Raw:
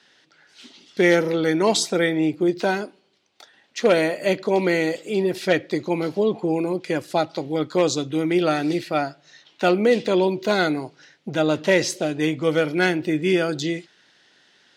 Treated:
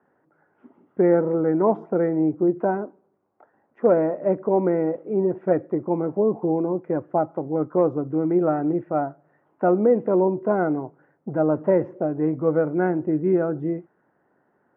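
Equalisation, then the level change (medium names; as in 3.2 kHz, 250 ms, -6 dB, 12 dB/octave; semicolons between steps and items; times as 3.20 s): inverse Chebyshev low-pass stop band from 3.9 kHz, stop band 60 dB; 0.0 dB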